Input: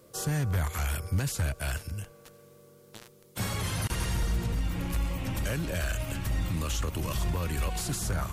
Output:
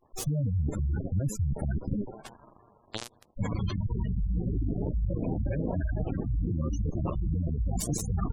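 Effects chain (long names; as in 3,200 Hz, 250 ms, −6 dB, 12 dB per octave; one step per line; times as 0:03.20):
echo with shifted repeats 164 ms, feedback 57%, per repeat +120 Hz, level −13.5 dB
in parallel at −10 dB: hard clipping −28 dBFS, distortion −12 dB
on the sum: harmonic generator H 3 −19 dB, 7 −20 dB, 8 −13 dB, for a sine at −17 dBFS
gate on every frequency bin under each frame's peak −10 dB strong
dynamic equaliser 1,900 Hz, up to −8 dB, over −54 dBFS, Q 1
reversed playback
downward compressor, threshold −34 dBFS, peak gain reduction 10 dB
reversed playback
level +8.5 dB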